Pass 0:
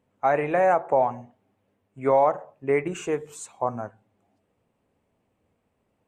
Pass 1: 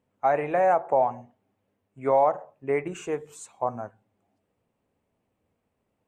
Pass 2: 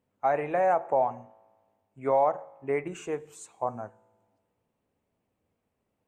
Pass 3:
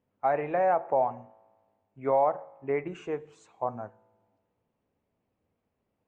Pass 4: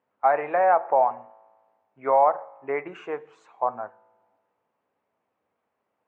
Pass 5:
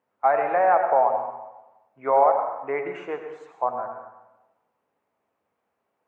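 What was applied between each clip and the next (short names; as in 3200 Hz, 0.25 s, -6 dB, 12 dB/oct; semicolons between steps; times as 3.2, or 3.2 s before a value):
dynamic EQ 730 Hz, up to +4 dB, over -32 dBFS, Q 1.5; gain -4 dB
resonator 55 Hz, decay 1.5 s, harmonics all, mix 30%
air absorption 170 m
band-pass 1200 Hz, Q 0.98; gain +9 dB
reverb RT60 1.0 s, pre-delay 83 ms, DRR 5.5 dB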